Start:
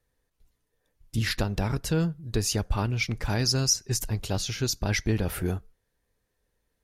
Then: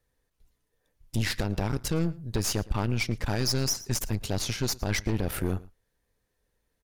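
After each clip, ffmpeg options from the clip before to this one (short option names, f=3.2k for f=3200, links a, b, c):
-af "aeval=exprs='0.282*(cos(1*acos(clip(val(0)/0.282,-1,1)))-cos(1*PI/2))+0.0316*(cos(8*acos(clip(val(0)/0.282,-1,1)))-cos(8*PI/2))':c=same,aecho=1:1:112:0.0708,alimiter=limit=-17dB:level=0:latency=1:release=71"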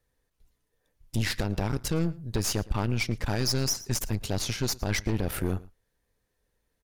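-af anull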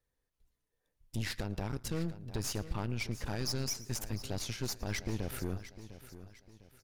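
-af "aecho=1:1:703|1406|2109|2812:0.2|0.0758|0.0288|0.0109,volume=-8.5dB"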